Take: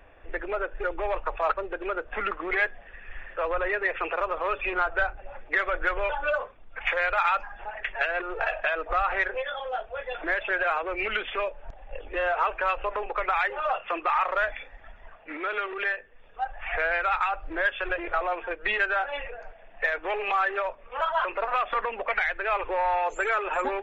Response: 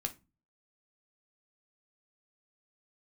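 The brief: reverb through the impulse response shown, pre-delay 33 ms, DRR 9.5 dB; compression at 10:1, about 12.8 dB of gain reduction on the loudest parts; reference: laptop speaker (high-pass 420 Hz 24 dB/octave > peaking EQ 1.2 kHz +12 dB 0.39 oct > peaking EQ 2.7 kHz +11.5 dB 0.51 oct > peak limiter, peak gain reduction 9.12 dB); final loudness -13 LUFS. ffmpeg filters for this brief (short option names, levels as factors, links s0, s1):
-filter_complex "[0:a]acompressor=threshold=0.02:ratio=10,asplit=2[s0][s1];[1:a]atrim=start_sample=2205,adelay=33[s2];[s1][s2]afir=irnorm=-1:irlink=0,volume=0.316[s3];[s0][s3]amix=inputs=2:normalize=0,highpass=f=420:w=0.5412,highpass=f=420:w=1.3066,equalizer=f=1200:t=o:w=0.39:g=12,equalizer=f=2700:t=o:w=0.51:g=11.5,volume=10.6,alimiter=limit=0.708:level=0:latency=1"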